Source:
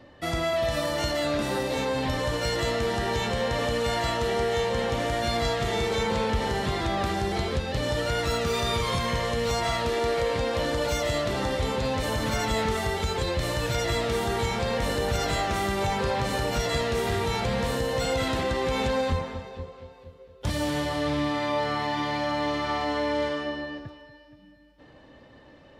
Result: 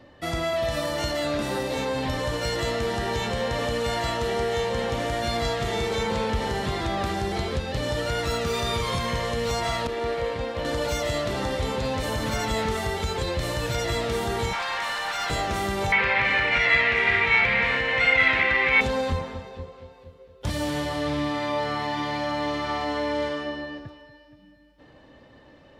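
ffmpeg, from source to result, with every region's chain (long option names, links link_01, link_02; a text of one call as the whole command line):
ffmpeg -i in.wav -filter_complex "[0:a]asettb=1/sr,asplit=3[link_01][link_02][link_03];[link_01]atrim=end=9.874[link_04];[link_02]atrim=start=9.87:end=10.65,asetpts=PTS-STARTPTS,afade=type=in:duration=0.004:curve=qsin,afade=type=out:start_time=0.776:duration=0.004:curve=qsin,acrossover=split=4000[link_05][link_06];[link_06]acompressor=threshold=-49dB:ratio=4:attack=1:release=60[link_07];[link_05][link_07]amix=inputs=2:normalize=0,agate=range=-33dB:threshold=-24dB:ratio=3:release=100:detection=peak[link_08];[link_03]atrim=start=10.646[link_09];[link_04][link_08]acrossfade=duration=0.004:curve1=hsin:curve2=qsin[link_10];[link_10][link_09]acrossfade=duration=0.004:curve1=qsin:curve2=hsin,asettb=1/sr,asplit=3[link_11][link_12][link_13];[link_11]atrim=end=14.534[link_14];[link_12]atrim=start=14.53:end=15.3,asetpts=PTS-STARTPTS,afade=type=in:duration=0.004:curve=qsin,afade=type=out:start_time=0.766:duration=0.004:curve=qsin,highpass=frequency=860:width=0.5412,highpass=frequency=860:width=1.3066,asplit=2[link_15][link_16];[link_16]highpass=frequency=720:poles=1,volume=18dB,asoftclip=type=tanh:threshold=-17.5dB[link_17];[link_15][link_17]amix=inputs=2:normalize=0,lowpass=frequency=1900:poles=1,volume=-6dB[link_18];[link_13]atrim=start=15.296[link_19];[link_14][link_18]acrossfade=duration=0.004:curve1=hsin:curve2=qsin[link_20];[link_20][link_19]acrossfade=duration=0.004:curve1=qsin:curve2=hsin,asettb=1/sr,asplit=3[link_21][link_22][link_23];[link_21]atrim=end=15.924[link_24];[link_22]atrim=start=15.92:end=18.81,asetpts=PTS-STARTPTS,afade=type=in:duration=0.004:curve=qsin,afade=type=out:start_time=2.886:duration=0.004:curve=qsin,aeval=exprs='val(0)+0.5*0.0106*sgn(val(0))':channel_layout=same,lowpass=frequency=2200:width_type=q:width=5.5,tiltshelf=frequency=970:gain=-7[link_25];[link_23]atrim=start=18.806[link_26];[link_24][link_25]acrossfade=duration=0.004:curve1=hsin:curve2=qsin[link_27];[link_27][link_26]acrossfade=duration=0.004:curve1=qsin:curve2=hsin" out.wav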